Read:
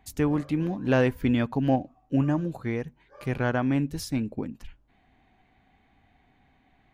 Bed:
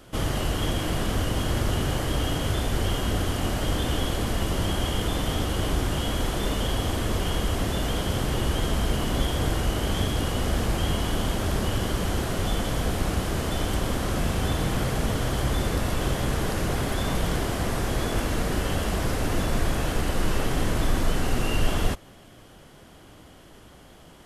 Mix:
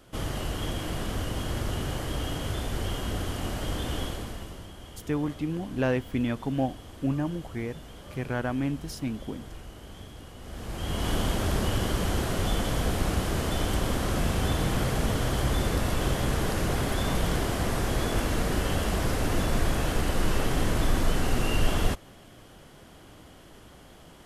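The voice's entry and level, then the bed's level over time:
4.90 s, -4.0 dB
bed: 4.03 s -5.5 dB
4.71 s -19 dB
10.38 s -19 dB
11.09 s -1 dB

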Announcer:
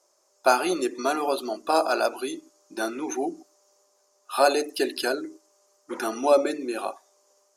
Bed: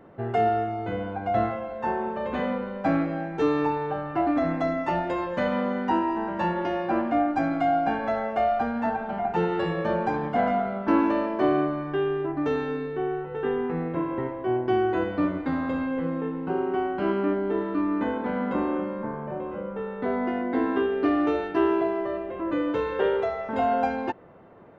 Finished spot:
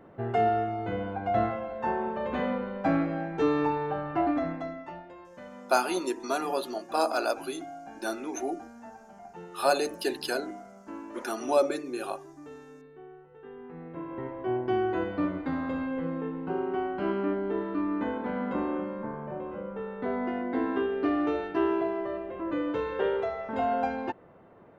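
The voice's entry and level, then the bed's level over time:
5.25 s, -4.5 dB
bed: 4.26 s -2 dB
5.12 s -20 dB
13.47 s -20 dB
14.40 s -4 dB

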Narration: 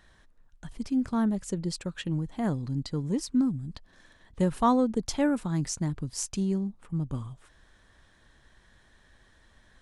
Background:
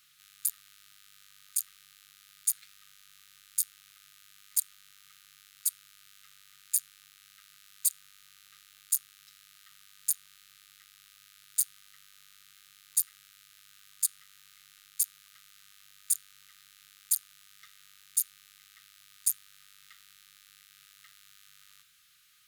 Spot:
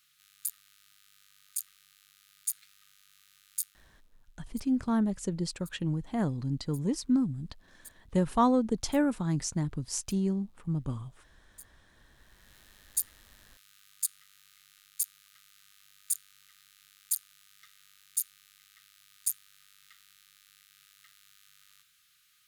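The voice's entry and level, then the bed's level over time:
3.75 s, -1.0 dB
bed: 3.62 s -4.5 dB
4.11 s -23.5 dB
11.86 s -23.5 dB
12.56 s -3 dB

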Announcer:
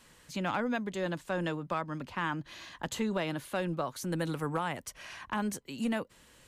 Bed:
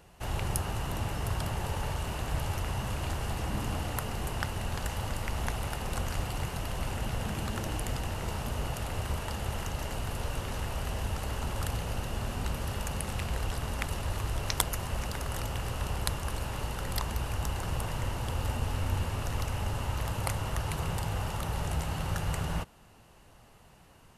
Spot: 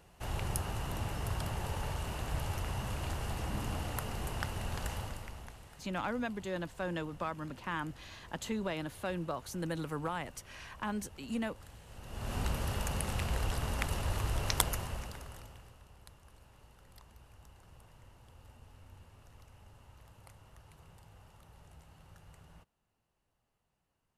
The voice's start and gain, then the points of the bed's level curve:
5.50 s, -4.0 dB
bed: 4.94 s -4 dB
5.65 s -21 dB
11.86 s -21 dB
12.35 s -1 dB
14.69 s -1 dB
15.84 s -25 dB

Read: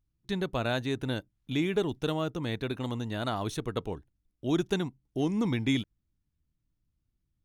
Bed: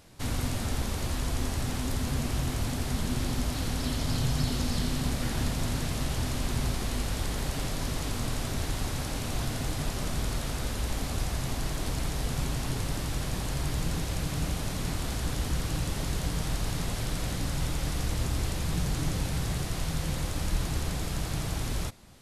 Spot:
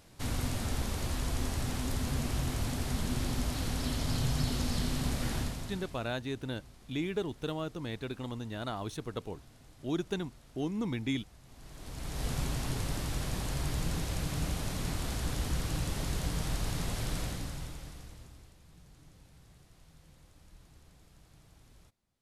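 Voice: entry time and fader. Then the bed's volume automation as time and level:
5.40 s, -5.5 dB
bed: 5.35 s -3 dB
6.18 s -25.5 dB
11.43 s -25.5 dB
12.26 s -3 dB
17.19 s -3 dB
18.57 s -28 dB

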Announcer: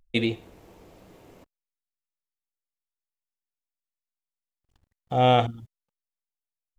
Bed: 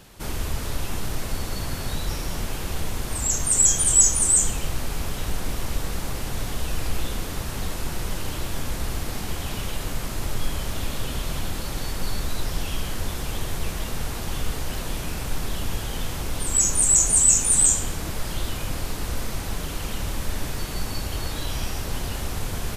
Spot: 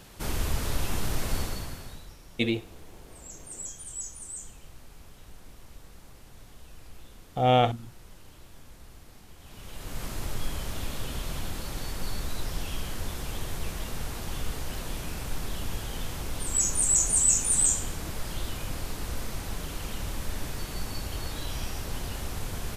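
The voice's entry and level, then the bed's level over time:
2.25 s, -2.0 dB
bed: 1.40 s -1 dB
2.16 s -21.5 dB
9.36 s -21.5 dB
10.03 s -5.5 dB

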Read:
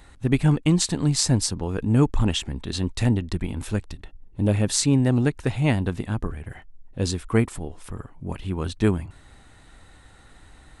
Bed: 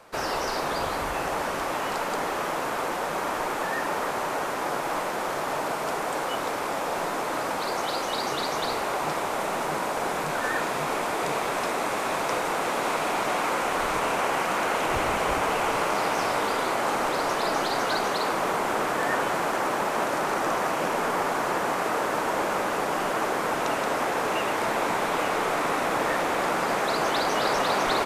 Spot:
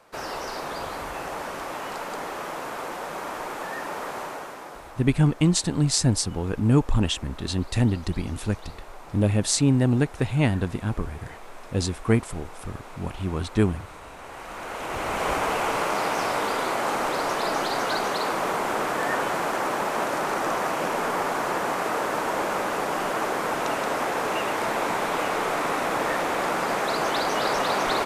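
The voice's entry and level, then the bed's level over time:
4.75 s, -0.5 dB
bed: 4.21 s -4.5 dB
5.04 s -17.5 dB
14.16 s -17.5 dB
15.27 s 0 dB

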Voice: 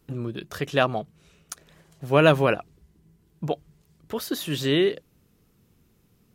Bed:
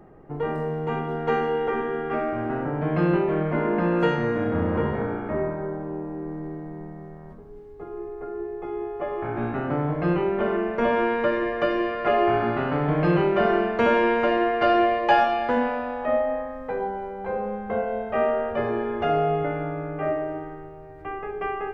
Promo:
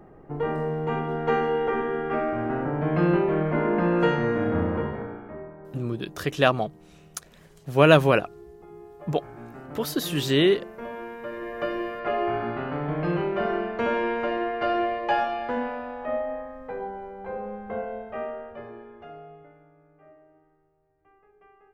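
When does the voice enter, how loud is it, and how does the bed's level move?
5.65 s, +1.5 dB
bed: 4.58 s 0 dB
5.49 s -14.5 dB
11.19 s -14.5 dB
11.62 s -5.5 dB
17.85 s -5.5 dB
19.70 s -28 dB

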